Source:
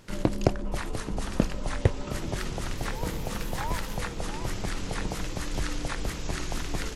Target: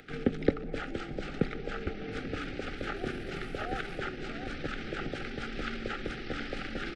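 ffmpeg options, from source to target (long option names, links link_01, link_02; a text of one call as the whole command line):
ffmpeg -i in.wav -filter_complex "[0:a]asplit=2[link_01][link_02];[link_02]asoftclip=type=tanh:threshold=-19.5dB,volume=-7.5dB[link_03];[link_01][link_03]amix=inputs=2:normalize=0,equalizer=frequency=860:width=5.6:gain=-13.5,acrossover=split=340[link_04][link_05];[link_05]asuperstop=centerf=1300:order=8:qfactor=2.5[link_06];[link_04][link_06]amix=inputs=2:normalize=0,asplit=3[link_07][link_08][link_09];[link_08]adelay=151,afreqshift=130,volume=-23dB[link_10];[link_09]adelay=302,afreqshift=260,volume=-32.9dB[link_11];[link_07][link_10][link_11]amix=inputs=3:normalize=0,asetrate=34006,aresample=44100,atempo=1.29684,acrossover=split=230 3300:gain=0.224 1 0.0794[link_12][link_13][link_14];[link_12][link_13][link_14]amix=inputs=3:normalize=0,acompressor=mode=upward:threshold=-50dB:ratio=2.5" out.wav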